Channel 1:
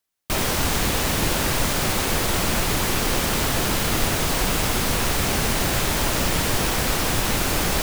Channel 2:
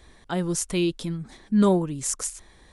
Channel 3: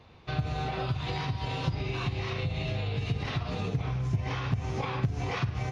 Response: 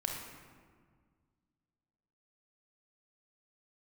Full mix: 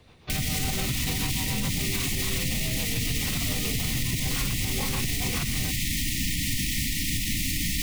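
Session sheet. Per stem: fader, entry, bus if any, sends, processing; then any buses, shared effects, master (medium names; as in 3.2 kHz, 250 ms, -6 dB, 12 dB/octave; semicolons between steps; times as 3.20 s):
-0.5 dB, 0.00 s, bus A, no send, none
-9.5 dB, 0.00 s, bus A, no send, none
+1.5 dB, 0.00 s, no bus, no send, treble shelf 3.7 kHz +7.5 dB; hum notches 50/100 Hz; rotary cabinet horn 7 Hz
bus A: 0.0 dB, brick-wall FIR band-stop 320–1800 Hz; peak limiter -16.5 dBFS, peak gain reduction 7 dB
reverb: none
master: peak limiter -17.5 dBFS, peak gain reduction 6 dB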